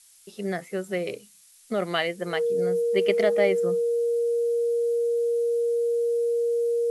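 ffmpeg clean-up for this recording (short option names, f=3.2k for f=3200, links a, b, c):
-af "bandreject=f=470:w=30,afftdn=nr=19:nf=-53"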